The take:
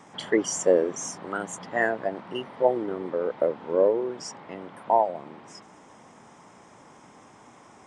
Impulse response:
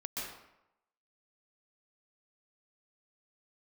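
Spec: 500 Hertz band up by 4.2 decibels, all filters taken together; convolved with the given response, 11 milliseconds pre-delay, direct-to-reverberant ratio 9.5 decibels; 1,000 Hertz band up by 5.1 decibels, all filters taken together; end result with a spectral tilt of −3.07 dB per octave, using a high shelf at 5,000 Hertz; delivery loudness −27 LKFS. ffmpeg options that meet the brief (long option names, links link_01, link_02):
-filter_complex "[0:a]equalizer=frequency=500:width_type=o:gain=3.5,equalizer=frequency=1000:width_type=o:gain=5,highshelf=frequency=5000:gain=6.5,asplit=2[link_01][link_02];[1:a]atrim=start_sample=2205,adelay=11[link_03];[link_02][link_03]afir=irnorm=-1:irlink=0,volume=-11.5dB[link_04];[link_01][link_04]amix=inputs=2:normalize=0,volume=-5dB"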